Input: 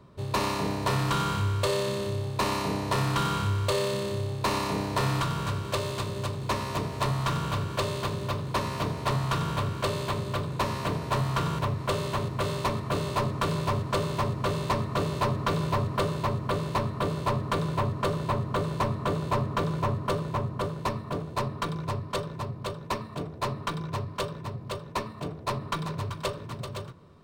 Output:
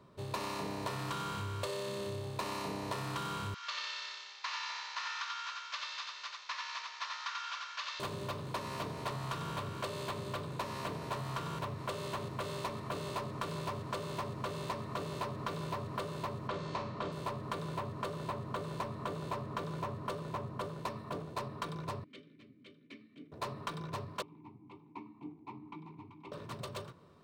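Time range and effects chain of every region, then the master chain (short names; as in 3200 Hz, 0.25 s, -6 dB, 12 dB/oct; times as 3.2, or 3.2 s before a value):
3.54–8 CVSD 32 kbps + HPF 1200 Hz 24 dB/oct + echo 88 ms -4 dB
16.48–17.12 LPF 6700 Hz 24 dB/oct + doubler 33 ms -6.5 dB + flutter echo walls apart 8.4 m, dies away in 0.3 s
22.04–23.32 vowel filter i + notch 3300 Hz, Q 28
24.22–26.32 vowel filter u + tone controls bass +10 dB, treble -4 dB
whole clip: low shelf 110 Hz -11.5 dB; compressor, threshold -31 dBFS; gain -4 dB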